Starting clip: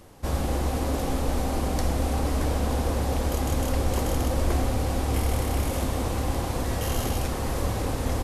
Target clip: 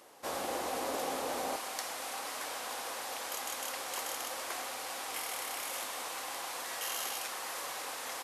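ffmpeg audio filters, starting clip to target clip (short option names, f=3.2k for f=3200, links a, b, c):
-af "asetnsamples=n=441:p=0,asendcmd='1.56 highpass f 1100',highpass=520,volume=-2dB"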